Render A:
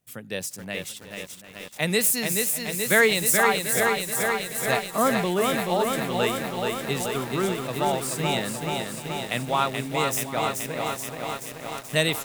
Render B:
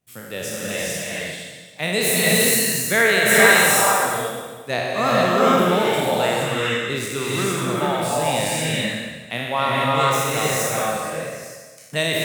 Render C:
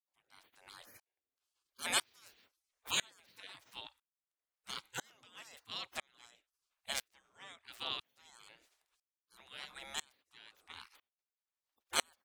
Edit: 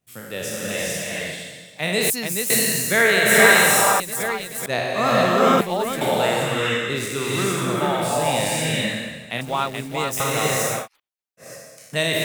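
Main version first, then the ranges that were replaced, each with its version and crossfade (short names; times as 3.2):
B
2.1–2.5 from A
4–4.66 from A
5.61–6.01 from A
9.41–10.2 from A
10.8–11.45 from C, crossfade 0.16 s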